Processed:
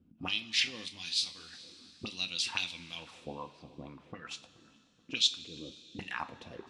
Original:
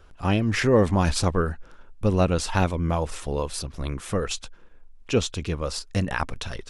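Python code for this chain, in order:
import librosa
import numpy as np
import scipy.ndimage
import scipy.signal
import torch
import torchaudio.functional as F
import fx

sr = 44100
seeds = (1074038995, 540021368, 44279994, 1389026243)

y = scipy.signal.sosfilt(scipy.signal.butter(2, 90.0, 'highpass', fs=sr, output='sos'), x)
y = fx.band_shelf(y, sr, hz=830.0, db=-14.5, octaves=2.5)
y = fx.level_steps(y, sr, step_db=21, at=(5.29, 5.99))
y = fx.auto_wah(y, sr, base_hz=210.0, top_hz=3900.0, q=3.4, full_db=-22.5, direction='up')
y = fx.spacing_loss(y, sr, db_at_10k=26, at=(3.32, 4.26))
y = fx.echo_filtered(y, sr, ms=429, feedback_pct=49, hz=1100.0, wet_db=-18.5)
y = fx.rev_double_slope(y, sr, seeds[0], early_s=0.25, late_s=3.1, knee_db=-18, drr_db=7.0)
y = fx.detune_double(y, sr, cents=18, at=(0.88, 1.52), fade=0.02)
y = y * librosa.db_to_amplitude(8.5)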